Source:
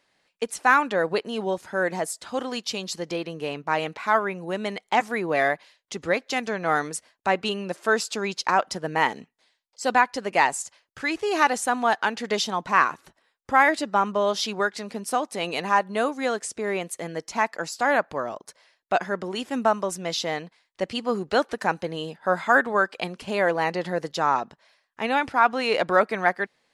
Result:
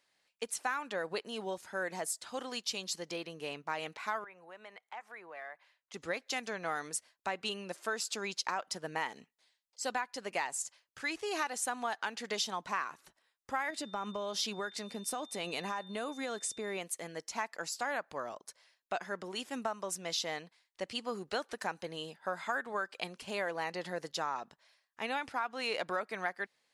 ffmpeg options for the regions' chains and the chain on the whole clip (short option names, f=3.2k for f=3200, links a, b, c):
-filter_complex "[0:a]asettb=1/sr,asplit=3[a][b][c];[a]atrim=end=4.244[d];[b]atrim=start=4.24:end=5.94,asetpts=PTS-STARTPTS,afade=t=in:d=0.004:c=qsin,afade=t=out:st=1.696:d=0.004:c=qsin,acrossover=split=550 2400:gain=0.158 1 0.178[e][f][g];[e][f][g]amix=inputs=3:normalize=0,acompressor=threshold=-42dB:ratio=2:attack=3.2:release=140:knee=1:detection=peak[h];[c]atrim=start=5.936[i];[d][h]acrossfade=d=0.004:c1=hsin:c2=qsin[j];[j][i]acrossfade=d=0.004:c1=qsin:c2=hsin,asettb=1/sr,asplit=3[k][l][m];[k]atrim=end=13.704[n];[l]atrim=start=13.7:end=16.78,asetpts=PTS-STARTPTS,afade=t=in:d=0.004:c=qsin,afade=t=out:st=3.076:d=0.004:c=qsin,lowshelf=f=390:g=6,acompressor=threshold=-22dB:ratio=6:attack=3.2:release=140:knee=1:detection=peak,aeval=exprs='val(0)+0.00447*sin(2*PI*3600*n/s)':c=same[o];[m]atrim=start=16.776[p];[n][o]acrossfade=d=0.004:c1=hsin:c2=qsin[q];[q][p]acrossfade=d=0.004:c1=qsin:c2=hsin,lowshelf=f=490:g=-5.5,acompressor=threshold=-23dB:ratio=6,highshelf=f=4k:g=6,volume=-8.5dB"